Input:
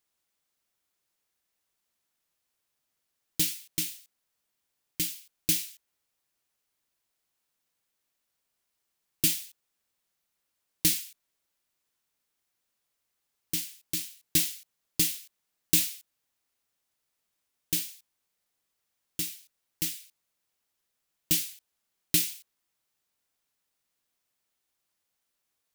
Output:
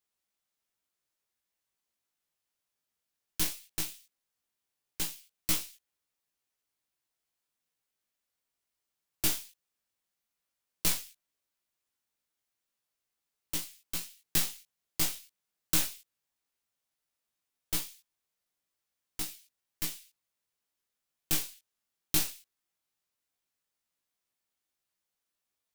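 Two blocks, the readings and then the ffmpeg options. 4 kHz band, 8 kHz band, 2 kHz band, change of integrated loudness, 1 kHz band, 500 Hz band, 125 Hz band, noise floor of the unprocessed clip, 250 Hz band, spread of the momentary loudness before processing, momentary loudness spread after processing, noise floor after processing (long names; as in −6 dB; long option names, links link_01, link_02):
−4.0 dB, −4.0 dB, −1.5 dB, −4.5 dB, can't be measured, 0.0 dB, −4.0 dB, −81 dBFS, −5.0 dB, 17 LU, 17 LU, below −85 dBFS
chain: -af "aeval=exprs='0.447*(cos(1*acos(clip(val(0)/0.447,-1,1)))-cos(1*PI/2))+0.2*(cos(6*acos(clip(val(0)/0.447,-1,1)))-cos(6*PI/2))+0.224*(cos(8*acos(clip(val(0)/0.447,-1,1)))-cos(8*PI/2))':channel_layout=same,flanger=delay=16:depth=3.1:speed=0.16,volume=-2.5dB"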